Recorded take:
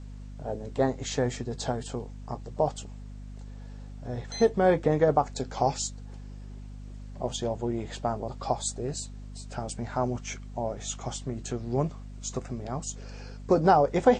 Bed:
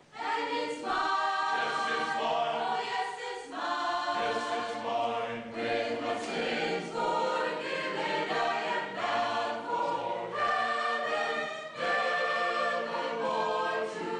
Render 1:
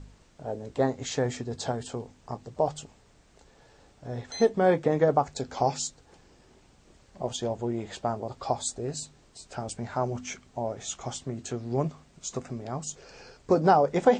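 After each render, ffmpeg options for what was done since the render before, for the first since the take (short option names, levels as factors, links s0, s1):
-af "bandreject=f=50:t=h:w=4,bandreject=f=100:t=h:w=4,bandreject=f=150:t=h:w=4,bandreject=f=200:t=h:w=4,bandreject=f=250:t=h:w=4"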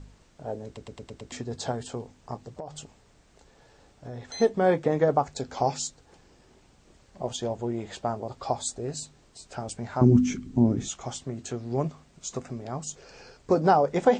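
-filter_complex "[0:a]asettb=1/sr,asplit=3[s0][s1][s2];[s0]atrim=end=2.534[s3];[s1]atrim=start=2.53:end=4.39,asetpts=PTS-STARTPTS,afade=t=in:d=0.004:c=qsin,afade=t=out:st=1.856:d=0.004:c=qsin,acompressor=threshold=0.0224:ratio=12:attack=3.2:release=140:knee=1:detection=peak[s4];[s2]atrim=start=4.386[s5];[s3][s4]acrossfade=d=0.004:c1=hsin:c2=qsin[s6];[s6][s5]acrossfade=d=0.004:c1=qsin:c2=hsin,asettb=1/sr,asplit=3[s7][s8][s9];[s7]atrim=end=10.014[s10];[s8]atrim=start=10.01:end=10.88,asetpts=PTS-STARTPTS,afade=t=in:d=0.004:c=qsin,afade=t=out:st=0.866:d=0.004:c=qsin,lowshelf=f=420:t=q:w=3:g=13.5[s11];[s9]atrim=start=10.876[s12];[s10][s11]acrossfade=d=0.004:c1=hsin:c2=qsin[s13];[s13][s12]acrossfade=d=0.004:c1=qsin:c2=hsin,asplit=7[s14][s15][s16][s17][s18][s19][s20];[s14]atrim=end=0.772[s21];[s15]atrim=start=0.658:end=0.772[s22];[s16]atrim=start=0.658:end=0.772[s23];[s17]atrim=start=0.658:end=0.772[s24];[s18]atrim=start=0.658:end=0.772[s25];[s19]atrim=start=0.658:end=0.772[s26];[s20]atrim=start=1.318[s27];[s21][s22]acrossfade=d=0.004:c1=hsin:c2=hsin[s28];[s28][s23]acrossfade=d=0.004:c1=hsin:c2=hsin[s29];[s29][s24]acrossfade=d=0.004:c1=hsin:c2=hsin[s30];[s30][s25]acrossfade=d=0.004:c1=hsin:c2=hsin[s31];[s31][s26]acrossfade=d=0.004:c1=hsin:c2=hsin[s32];[s32][s27]acrossfade=d=0.004:c1=hsin:c2=hsin"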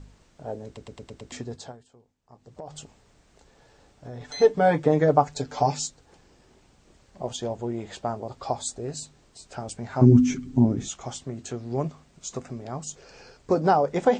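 -filter_complex "[0:a]asettb=1/sr,asplit=3[s0][s1][s2];[s0]atrim=end=4.204[s3];[s1]atrim=start=4.2:end=5.86,asetpts=PTS-STARTPTS,afade=t=in:d=0.004:c=qsin,afade=t=out:st=1.656:d=0.004:c=qsin,aecho=1:1:6.8:0.9,atrim=end_sample=73206[s4];[s2]atrim=start=5.856[s5];[s3][s4]acrossfade=d=0.004:c1=hsin:c2=qsin[s6];[s6][s5]acrossfade=d=0.004:c1=qsin:c2=hsin,asettb=1/sr,asplit=3[s7][s8][s9];[s7]atrim=end=9.904[s10];[s8]atrim=start=9.9:end=10.65,asetpts=PTS-STARTPTS,afade=t=in:d=0.004:c=qsin,afade=t=out:st=0.746:d=0.004:c=qsin,aecho=1:1:7.5:0.63,atrim=end_sample=33075[s11];[s9]atrim=start=10.646[s12];[s10][s11]acrossfade=d=0.004:c1=hsin:c2=qsin[s13];[s13][s12]acrossfade=d=0.004:c1=qsin:c2=hsin,asplit=3[s14][s15][s16];[s14]atrim=end=1.9,asetpts=PTS-STARTPTS,afade=t=out:st=1.46:d=0.44:c=qua:silence=0.0841395[s17];[s15]atrim=start=1.9:end=2.21,asetpts=PTS-STARTPTS,volume=0.0841[s18];[s16]atrim=start=2.21,asetpts=PTS-STARTPTS,afade=t=in:d=0.44:c=qua:silence=0.0841395[s19];[s17][s18][s19]concat=n=3:v=0:a=1"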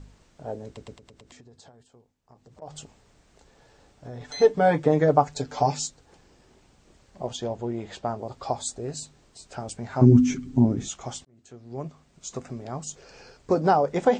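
-filter_complex "[0:a]asettb=1/sr,asplit=3[s0][s1][s2];[s0]atrim=end=0.974[s3];[s1]atrim=start=0.97:end=2.62,asetpts=PTS-STARTPTS,afade=t=in:d=0.004:c=qsin,afade=t=out:st=1.646:d=0.004:c=qsin,acompressor=threshold=0.00447:ratio=12:attack=3.2:release=140:knee=1:detection=peak[s4];[s2]atrim=start=2.616[s5];[s3][s4]acrossfade=d=0.004:c1=hsin:c2=qsin[s6];[s6][s5]acrossfade=d=0.004:c1=qsin:c2=hsin,asettb=1/sr,asplit=3[s7][s8][s9];[s7]atrim=end=7.274[s10];[s8]atrim=start=7.27:end=8.19,asetpts=PTS-STARTPTS,afade=t=in:d=0.004:c=qsin,afade=t=out:st=0.916:d=0.004:c=qsin,lowpass=7000[s11];[s9]atrim=start=8.186[s12];[s10][s11]acrossfade=d=0.004:c1=hsin:c2=qsin[s13];[s13][s12]acrossfade=d=0.004:c1=qsin:c2=hsin,asplit=2[s14][s15];[s14]atrim=end=11.25,asetpts=PTS-STARTPTS,afade=t=out:st=11.246:d=0.004:c=hsin[s16];[s15]atrim=start=11.25,asetpts=PTS-STARTPTS,afade=t=in:d=1.23[s17];[s16][s17]concat=n=2:v=0:a=1"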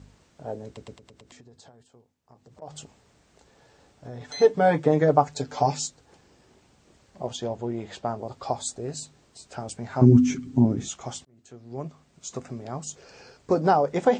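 -af "highpass=63"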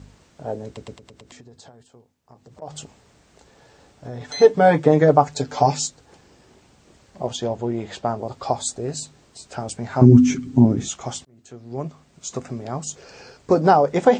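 -af "volume=1.88,alimiter=limit=0.891:level=0:latency=1"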